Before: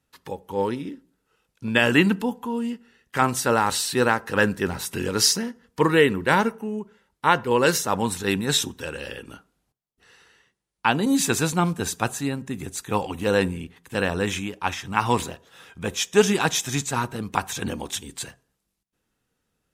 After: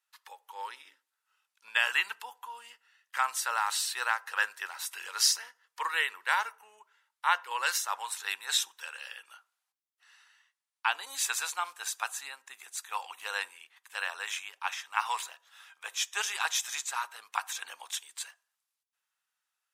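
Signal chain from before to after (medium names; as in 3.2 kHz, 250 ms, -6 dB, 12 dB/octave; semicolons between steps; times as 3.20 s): high-pass 920 Hz 24 dB/octave; trim -5.5 dB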